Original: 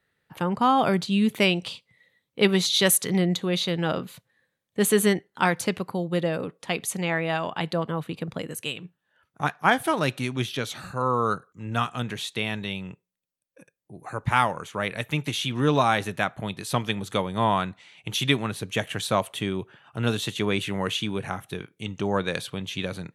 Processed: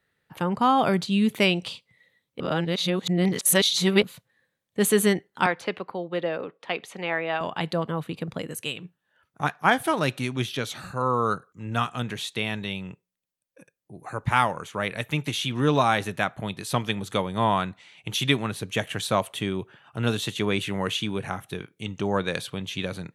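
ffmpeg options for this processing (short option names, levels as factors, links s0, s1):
-filter_complex "[0:a]asettb=1/sr,asplit=3[s0][s1][s2];[s0]atrim=end=5.464[s3];[s1]atrim=start=5.46:end=7.41,asetpts=PTS-STARTPTS,afade=t=in:d=0.004:c=qsin,afade=t=out:st=1.946:d=0.004:c=qsin,acrossover=split=300 4100:gain=0.224 1 0.1[s4][s5][s6];[s4][s5][s6]amix=inputs=3:normalize=0[s7];[s2]atrim=start=7.406[s8];[s3][s7]acrossfade=d=0.004:c1=hsin:c2=qsin[s9];[s9][s8]acrossfade=d=0.004:c1=qsin:c2=hsin,asplit=3[s10][s11][s12];[s10]atrim=end=2.402[s13];[s11]atrim=start=2.398:end=4.032,asetpts=PTS-STARTPTS,areverse[s14];[s12]atrim=start=4.028[s15];[s13][s14]acrossfade=d=0.004:c1=hsin:c2=hsin[s16];[s16][s15]acrossfade=d=0.004:c1=hsin:c2=hsin"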